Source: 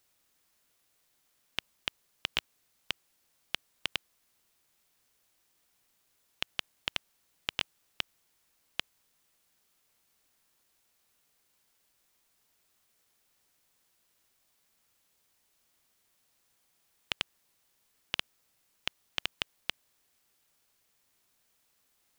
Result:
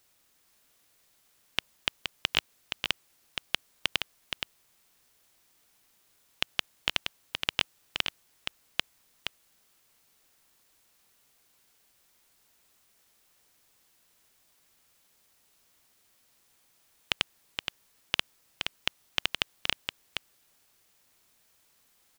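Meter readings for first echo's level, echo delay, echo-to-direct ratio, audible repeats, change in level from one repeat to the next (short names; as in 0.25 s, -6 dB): -6.0 dB, 0.471 s, -6.0 dB, 1, no steady repeat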